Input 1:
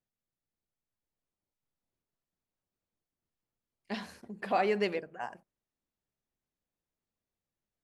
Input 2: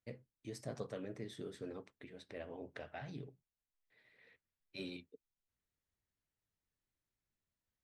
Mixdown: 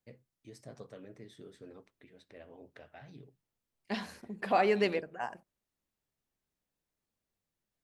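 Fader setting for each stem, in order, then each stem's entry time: +1.5 dB, -5.0 dB; 0.00 s, 0.00 s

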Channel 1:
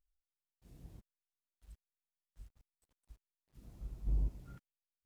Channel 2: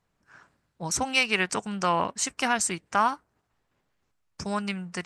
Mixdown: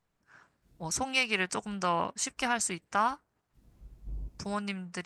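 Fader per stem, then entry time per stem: -6.0 dB, -4.5 dB; 0.00 s, 0.00 s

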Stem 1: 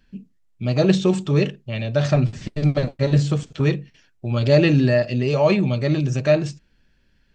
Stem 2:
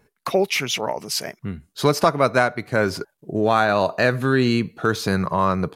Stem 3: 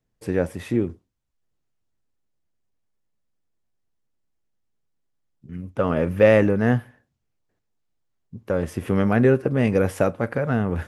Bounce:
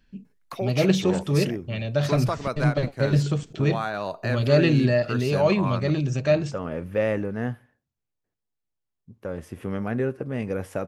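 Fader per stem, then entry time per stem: -3.5 dB, -11.0 dB, -9.0 dB; 0.00 s, 0.25 s, 0.75 s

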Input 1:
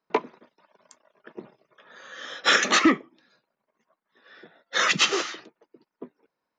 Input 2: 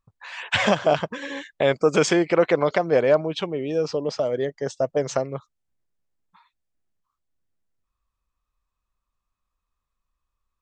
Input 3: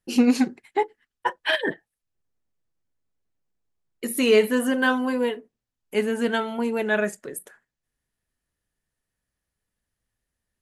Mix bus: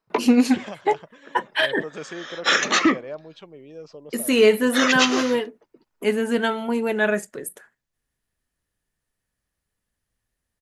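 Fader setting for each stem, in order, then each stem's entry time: +0.5 dB, -16.5 dB, +2.0 dB; 0.00 s, 0.00 s, 0.10 s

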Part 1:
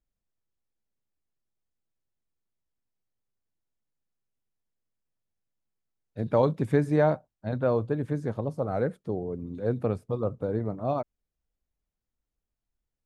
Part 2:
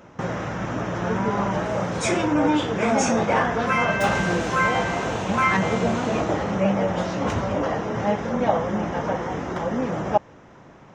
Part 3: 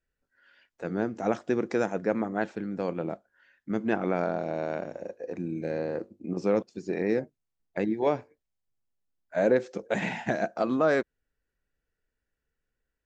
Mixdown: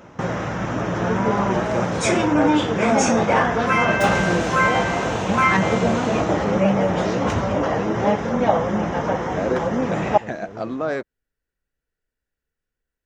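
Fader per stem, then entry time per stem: -11.0 dB, +3.0 dB, -1.0 dB; 0.00 s, 0.00 s, 0.00 s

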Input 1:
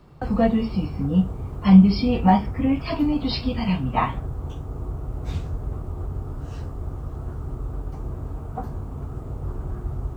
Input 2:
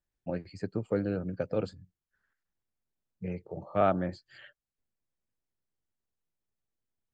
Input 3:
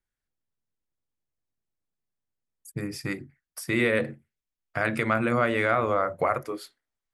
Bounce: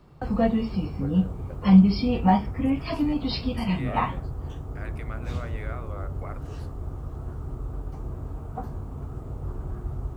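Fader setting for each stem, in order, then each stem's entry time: -3.0 dB, -11.5 dB, -16.5 dB; 0.00 s, 0.10 s, 0.00 s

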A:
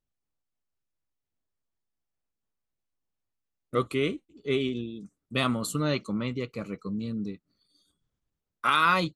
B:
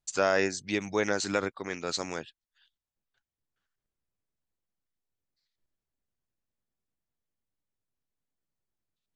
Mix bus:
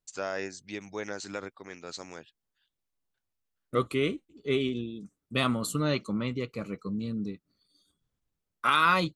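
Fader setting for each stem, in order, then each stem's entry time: -0.5 dB, -8.5 dB; 0.00 s, 0.00 s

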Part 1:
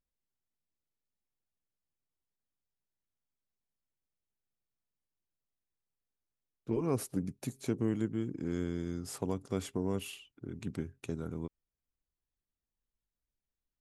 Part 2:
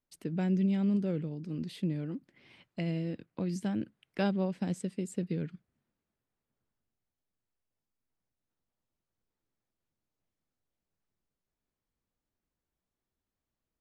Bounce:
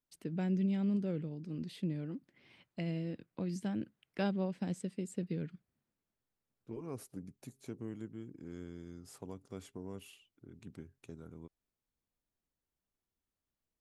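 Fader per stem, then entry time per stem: -11.5 dB, -4.0 dB; 0.00 s, 0.00 s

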